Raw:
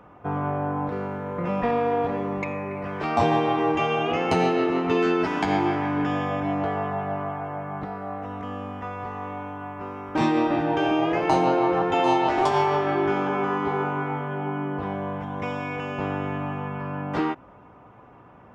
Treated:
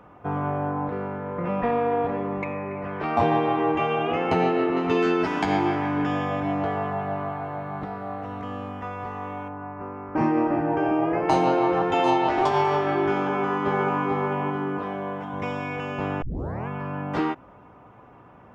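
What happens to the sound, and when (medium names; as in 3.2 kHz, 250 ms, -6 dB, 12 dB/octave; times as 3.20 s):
0.70–4.77 s: tone controls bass -1 dB, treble -14 dB
6.31–8.68 s: mains buzz 120 Hz, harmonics 37, -52 dBFS -6 dB/octave
9.48–11.29 s: boxcar filter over 12 samples
12.10–12.65 s: distance through air 62 m
13.21–14.06 s: echo throw 440 ms, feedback 40%, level -3.5 dB
14.78–15.33 s: Bessel high-pass 190 Hz
16.22 s: tape start 0.46 s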